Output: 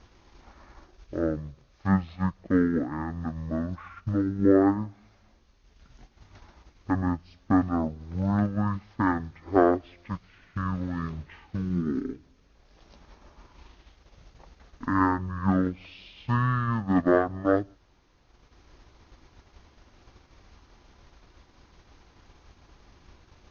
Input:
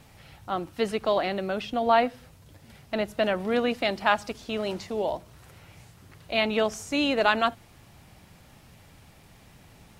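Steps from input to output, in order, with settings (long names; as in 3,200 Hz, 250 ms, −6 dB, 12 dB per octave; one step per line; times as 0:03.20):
transient designer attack +5 dB, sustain −7 dB
change of speed 0.425×
level −2 dB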